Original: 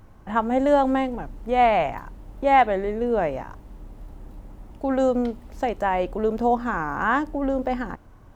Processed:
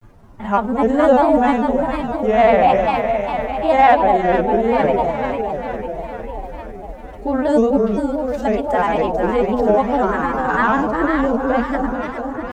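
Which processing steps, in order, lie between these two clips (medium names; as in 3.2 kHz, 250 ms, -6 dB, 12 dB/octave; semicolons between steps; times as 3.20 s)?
in parallel at -9 dB: saturation -15.5 dBFS, distortion -14 dB; on the sum: echo whose repeats swap between lows and highs 152 ms, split 850 Hz, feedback 79%, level -3 dB; time stretch by phase-locked vocoder 1.5×; granulator, spray 14 ms, pitch spread up and down by 3 st; trim +3.5 dB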